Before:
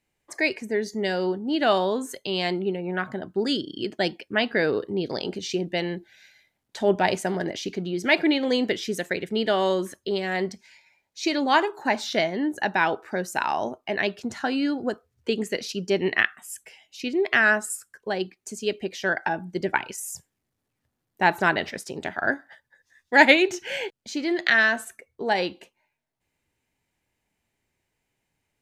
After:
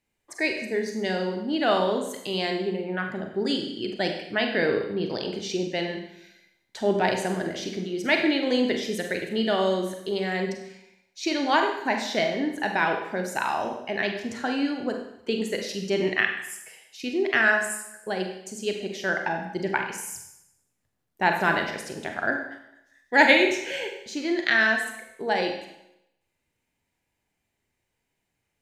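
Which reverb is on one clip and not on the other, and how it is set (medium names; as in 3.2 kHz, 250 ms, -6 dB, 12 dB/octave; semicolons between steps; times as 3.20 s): Schroeder reverb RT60 0.81 s, combs from 32 ms, DRR 3.5 dB; trim -2.5 dB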